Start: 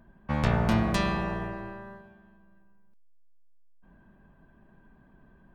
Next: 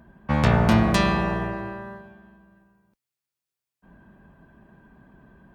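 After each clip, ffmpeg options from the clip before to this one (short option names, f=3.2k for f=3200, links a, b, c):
-af "highpass=47,volume=6.5dB"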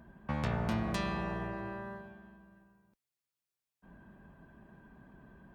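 -af "acompressor=threshold=-35dB:ratio=2,volume=-4dB"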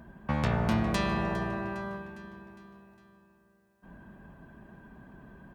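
-af "aecho=1:1:407|814|1221|1628|2035:0.168|0.089|0.0472|0.025|0.0132,volume=5.5dB"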